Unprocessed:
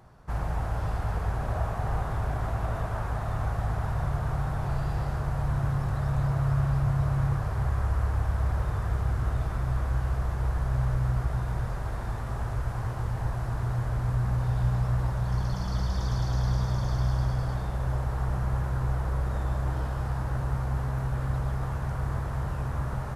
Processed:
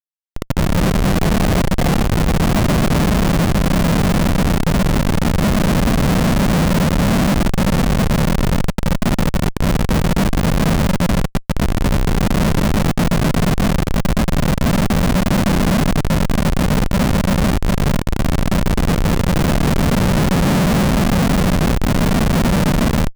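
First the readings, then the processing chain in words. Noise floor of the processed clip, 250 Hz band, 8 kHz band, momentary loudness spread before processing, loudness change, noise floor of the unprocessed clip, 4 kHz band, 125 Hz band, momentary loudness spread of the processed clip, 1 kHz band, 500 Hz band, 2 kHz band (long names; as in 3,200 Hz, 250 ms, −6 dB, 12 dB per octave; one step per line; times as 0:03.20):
−25 dBFS, +22.5 dB, can't be measured, 5 LU, +13.0 dB, −33 dBFS, +23.5 dB, +9.5 dB, 3 LU, +13.0 dB, +18.0 dB, +17.5 dB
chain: auto-filter low-pass saw up 0.22 Hz 420–2,300 Hz
random phases in short frames
low-shelf EQ 500 Hz +10.5 dB
automatic gain control gain up to 11 dB
linear-phase brick-wall high-pass 150 Hz
high-shelf EQ 5,600 Hz −11.5 dB
comparator with hysteresis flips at −18.5 dBFS
level +7 dB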